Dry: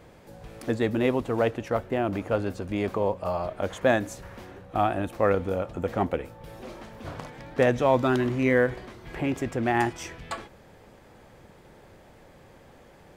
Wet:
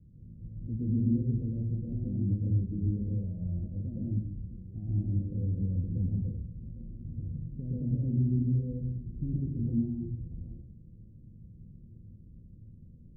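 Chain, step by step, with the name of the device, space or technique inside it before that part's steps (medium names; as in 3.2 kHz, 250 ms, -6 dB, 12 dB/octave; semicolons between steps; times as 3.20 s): club heard from the street (peak limiter -17.5 dBFS, peak gain reduction 9 dB; low-pass 200 Hz 24 dB/octave; reverberation RT60 0.60 s, pre-delay 112 ms, DRR -5 dB); 6.10–6.90 s: dynamic bell 320 Hz, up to -6 dB, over -53 dBFS, Q 2; steep low-pass 780 Hz 48 dB/octave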